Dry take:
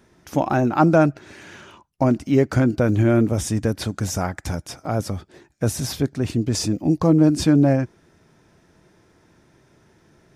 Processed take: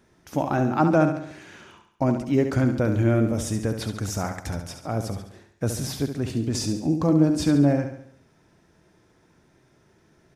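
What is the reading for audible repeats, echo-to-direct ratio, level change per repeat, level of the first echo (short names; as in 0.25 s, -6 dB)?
5, -7.0 dB, -6.0 dB, -8.0 dB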